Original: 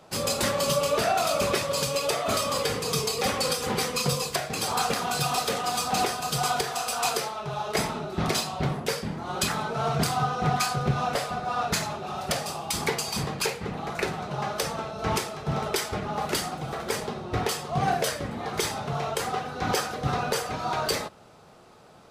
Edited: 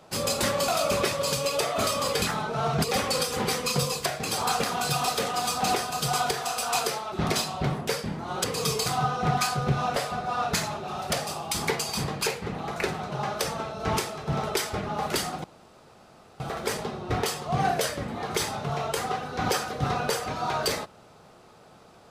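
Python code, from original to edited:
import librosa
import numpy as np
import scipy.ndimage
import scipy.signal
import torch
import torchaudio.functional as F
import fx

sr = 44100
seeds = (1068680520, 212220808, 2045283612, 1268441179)

y = fx.edit(x, sr, fx.cut(start_s=0.68, length_s=0.5),
    fx.swap(start_s=2.72, length_s=0.42, other_s=9.43, other_length_s=0.62),
    fx.cut(start_s=7.42, length_s=0.69),
    fx.insert_room_tone(at_s=16.63, length_s=0.96), tone=tone)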